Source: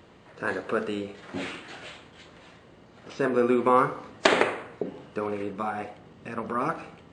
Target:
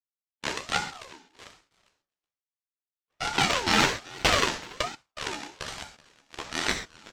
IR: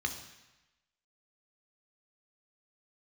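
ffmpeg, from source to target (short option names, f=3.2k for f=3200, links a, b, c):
-filter_complex "[0:a]agate=range=-40dB:threshold=-42dB:ratio=16:detection=peak,equalizer=f=2.7k:t=o:w=2.9:g=-5.5,acrusher=samples=13:mix=1:aa=0.000001:lfo=1:lforange=13:lforate=2.1,acontrast=30,asoftclip=type=tanh:threshold=-17dB,asetrate=29433,aresample=44100,atempo=1.49831,highpass=f=180:w=0.5412,highpass=f=180:w=1.3066,equalizer=f=190:t=q:w=4:g=-9,equalizer=f=440:t=q:w=4:g=-9,equalizer=f=990:t=q:w=4:g=4,equalizer=f=1.5k:t=q:w=4:g=5,equalizer=f=2.3k:t=q:w=4:g=5,equalizer=f=5k:t=q:w=4:g=6,lowpass=f=6.8k:w=0.5412,lowpass=f=6.8k:w=1.3066,aeval=exprs='0.398*(cos(1*acos(clip(val(0)/0.398,-1,1)))-cos(1*PI/2))+0.0178*(cos(3*acos(clip(val(0)/0.398,-1,1)))-cos(3*PI/2))+0.0501*(cos(7*acos(clip(val(0)/0.398,-1,1)))-cos(7*PI/2))+0.00316*(cos(8*acos(clip(val(0)/0.398,-1,1)))-cos(8*PI/2))':c=same,aecho=1:1:377:0.0841[a];[1:a]atrim=start_sample=2205,atrim=end_sample=6174[b];[a][b]afir=irnorm=-1:irlink=0,aeval=exprs='val(0)*sin(2*PI*850*n/s+850*0.35/1.2*sin(2*PI*1.2*n/s))':c=same,volume=4dB"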